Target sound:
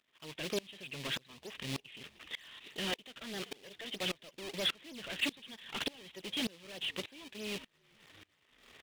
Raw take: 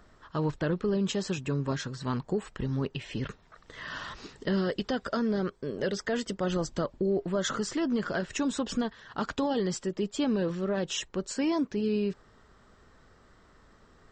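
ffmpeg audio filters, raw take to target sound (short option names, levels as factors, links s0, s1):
-filter_complex "[0:a]aeval=exprs='if(lt(val(0),0),0.251*val(0),val(0))':c=same,highpass=130,aresample=8000,asoftclip=type=tanh:threshold=0.0376,aresample=44100,atempo=1.6,asplit=2[s0][s1];[s1]acrusher=samples=36:mix=1:aa=0.000001:lfo=1:lforange=57.6:lforate=3.2,volume=0.473[s2];[s0][s2]amix=inputs=2:normalize=0,aexciter=amount=5.9:drive=7.8:freq=2100,asplit=2[s3][s4];[s4]highpass=f=720:p=1,volume=3.16,asoftclip=type=tanh:threshold=0.0596[s5];[s3][s5]amix=inputs=2:normalize=0,lowpass=f=2500:p=1,volume=0.501,asplit=5[s6][s7][s8][s9][s10];[s7]adelay=385,afreqshift=-58,volume=0.0708[s11];[s8]adelay=770,afreqshift=-116,volume=0.0389[s12];[s9]adelay=1155,afreqshift=-174,volume=0.0214[s13];[s10]adelay=1540,afreqshift=-232,volume=0.0117[s14];[s6][s11][s12][s13][s14]amix=inputs=5:normalize=0,aeval=exprs='val(0)*pow(10,-26*if(lt(mod(-1.7*n/s,1),2*abs(-1.7)/1000),1-mod(-1.7*n/s,1)/(2*abs(-1.7)/1000),(mod(-1.7*n/s,1)-2*abs(-1.7)/1000)/(1-2*abs(-1.7)/1000))/20)':c=same,volume=1.12"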